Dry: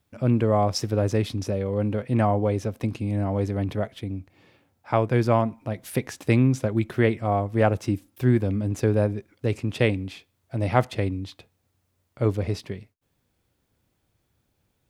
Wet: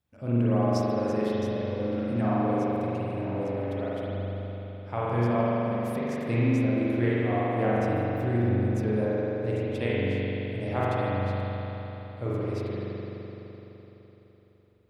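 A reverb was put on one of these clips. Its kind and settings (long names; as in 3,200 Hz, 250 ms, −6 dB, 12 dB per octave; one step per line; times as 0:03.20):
spring reverb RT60 3.9 s, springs 42 ms, chirp 40 ms, DRR −9 dB
level −12 dB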